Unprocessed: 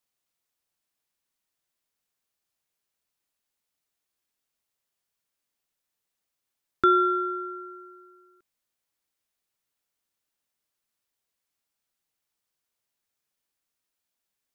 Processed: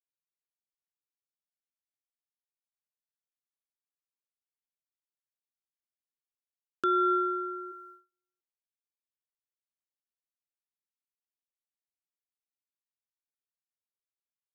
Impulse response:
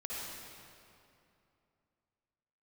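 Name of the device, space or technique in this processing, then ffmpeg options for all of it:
PA system with an anti-feedback notch: -filter_complex "[0:a]agate=range=-37dB:threshold=-48dB:ratio=16:detection=peak,asplit=3[link_01][link_02][link_03];[link_01]afade=type=out:start_time=7.71:duration=0.02[link_04];[link_02]highpass=520,afade=type=in:start_time=7.71:duration=0.02,afade=type=out:start_time=8.11:duration=0.02[link_05];[link_03]afade=type=in:start_time=8.11:duration=0.02[link_06];[link_04][link_05][link_06]amix=inputs=3:normalize=0,highpass=150,asuperstop=centerf=2100:order=4:qfactor=2.5,alimiter=limit=-19dB:level=0:latency=1:release=22"

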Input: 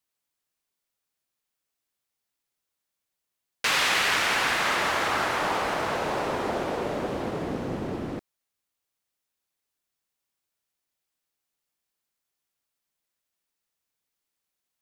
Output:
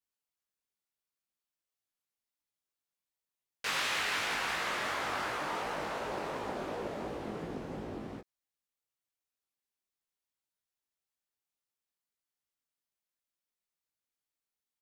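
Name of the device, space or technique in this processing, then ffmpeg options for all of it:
double-tracked vocal: -filter_complex "[0:a]asplit=2[link_01][link_02];[link_02]adelay=19,volume=-5dB[link_03];[link_01][link_03]amix=inputs=2:normalize=0,flanger=delay=16.5:depth=7.8:speed=2.8,volume=-7.5dB"

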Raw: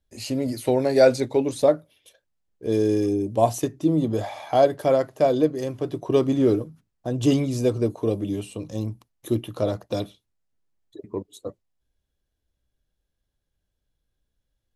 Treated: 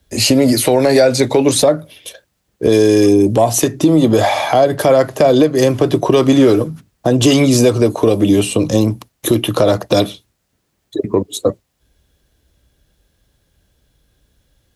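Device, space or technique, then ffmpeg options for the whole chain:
mastering chain: -filter_complex "[0:a]highpass=43,equalizer=frequency=890:width_type=o:width=0.77:gain=-1.5,acrossover=split=220|630[link_01][link_02][link_03];[link_01]acompressor=threshold=-39dB:ratio=4[link_04];[link_02]acompressor=threshold=-30dB:ratio=4[link_05];[link_03]acompressor=threshold=-28dB:ratio=4[link_06];[link_04][link_05][link_06]amix=inputs=3:normalize=0,acompressor=threshold=-28dB:ratio=2.5,asoftclip=type=tanh:threshold=-15.5dB,alimiter=level_in=22.5dB:limit=-1dB:release=50:level=0:latency=1,volume=-1dB"

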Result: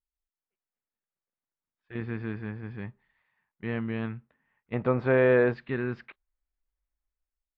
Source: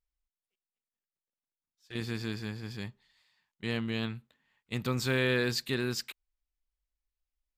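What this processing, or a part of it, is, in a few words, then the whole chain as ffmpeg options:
action camera in a waterproof case: -filter_complex "[0:a]asettb=1/sr,asplit=3[link_01][link_02][link_03];[link_01]atrim=end=4.734[link_04];[link_02]atrim=start=4.73:end=5.54,asetpts=PTS-STARTPTS,afade=type=in:duration=0.004:curve=qsin,afade=type=out:start_time=0.806:duration=0.004:curve=qsin,equalizer=frequency=620:width_type=o:width=1.3:gain=12.5[link_05];[link_03]atrim=start=5.536[link_06];[link_04][link_05]acrossfade=duration=0.004:curve1=hsin:curve2=qsin[link_07];[link_07][link_06]acrossfade=duration=0.004:curve1=qsin:curve2=hsin,lowpass=frequency=2100:width=0.5412,lowpass=frequency=2100:width=1.3066,dynaudnorm=framelen=110:gausssize=7:maxgain=9dB,volume=-7dB" -ar 22050 -c:a aac -b:a 96k

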